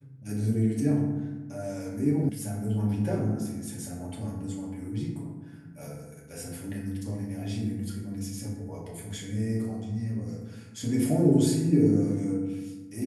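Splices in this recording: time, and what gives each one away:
2.29 s: sound stops dead

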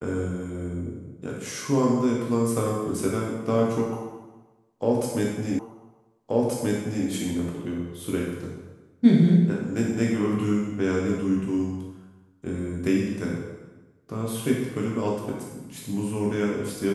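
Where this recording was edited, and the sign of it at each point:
5.59 s: repeat of the last 1.48 s

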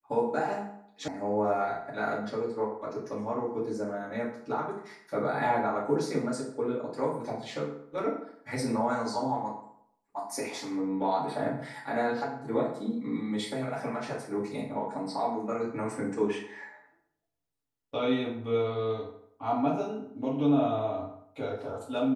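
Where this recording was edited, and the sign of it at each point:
1.08 s: sound stops dead

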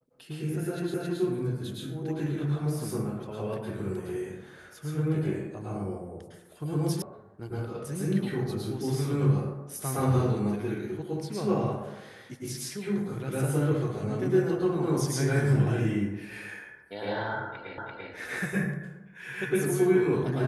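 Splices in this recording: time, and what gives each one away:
0.94 s: repeat of the last 0.27 s
7.02 s: sound stops dead
17.78 s: repeat of the last 0.34 s

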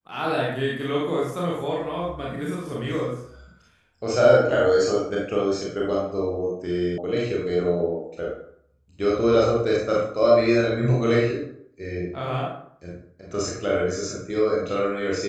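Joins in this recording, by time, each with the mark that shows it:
6.98 s: sound stops dead

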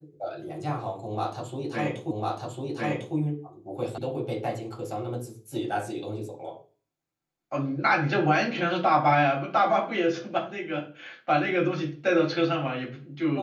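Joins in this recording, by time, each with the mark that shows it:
2.11 s: repeat of the last 1.05 s
3.98 s: sound stops dead

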